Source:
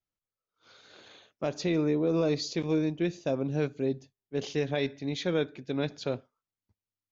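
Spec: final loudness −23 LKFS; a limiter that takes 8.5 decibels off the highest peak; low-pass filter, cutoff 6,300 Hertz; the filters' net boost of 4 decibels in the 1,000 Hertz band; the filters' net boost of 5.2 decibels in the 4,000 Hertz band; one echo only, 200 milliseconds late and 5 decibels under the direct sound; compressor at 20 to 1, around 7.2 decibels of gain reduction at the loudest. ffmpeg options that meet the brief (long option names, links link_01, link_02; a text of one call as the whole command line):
ffmpeg -i in.wav -af "lowpass=6300,equalizer=frequency=1000:width_type=o:gain=5.5,equalizer=frequency=4000:width_type=o:gain=6.5,acompressor=threshold=-29dB:ratio=20,alimiter=level_in=3dB:limit=-24dB:level=0:latency=1,volume=-3dB,aecho=1:1:200:0.562,volume=14dB" out.wav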